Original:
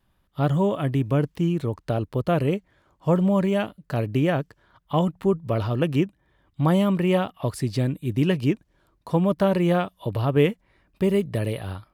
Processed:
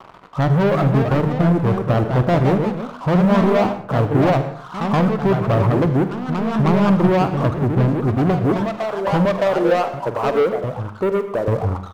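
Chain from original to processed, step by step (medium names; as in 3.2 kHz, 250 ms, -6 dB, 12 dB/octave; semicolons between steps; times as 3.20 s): zero-crossing glitches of -21.5 dBFS; 9.25–11.48 s: high-pass 500 Hz 12 dB/octave; reverb removal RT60 0.65 s; steep low-pass 1.3 kHz 72 dB/octave; peak limiter -17 dBFS, peak gain reduction 6.5 dB; waveshaping leveller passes 3; early reflections 46 ms -14 dB, 78 ms -16 dB; plate-style reverb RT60 0.6 s, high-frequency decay 0.6×, pre-delay 90 ms, DRR 12 dB; ever faster or slower copies 413 ms, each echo +2 st, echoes 2, each echo -6 dB; trim +4 dB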